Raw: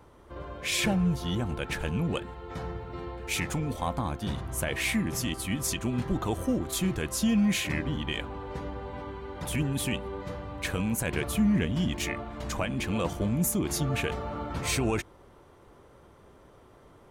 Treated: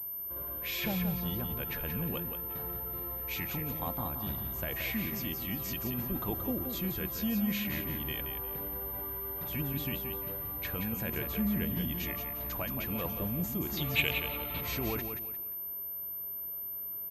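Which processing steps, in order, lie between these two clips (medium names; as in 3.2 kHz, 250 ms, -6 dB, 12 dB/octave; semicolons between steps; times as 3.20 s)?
13.77–14.61 s: high-order bell 2.9 kHz +14 dB 1.2 oct; feedback delay 176 ms, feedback 31%, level -7 dB; class-D stage that switches slowly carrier 13 kHz; trim -7.5 dB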